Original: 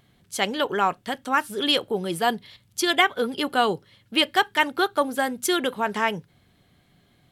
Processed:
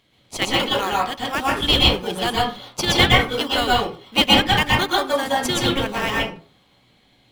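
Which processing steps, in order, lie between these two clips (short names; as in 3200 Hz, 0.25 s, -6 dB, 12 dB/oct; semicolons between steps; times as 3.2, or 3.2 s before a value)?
weighting filter D; in parallel at -3.5 dB: decimation with a swept rate 21×, swing 60% 0.75 Hz; on the sum: reverb RT60 0.40 s, pre-delay 0.115 s, DRR -4 dB; gain -8 dB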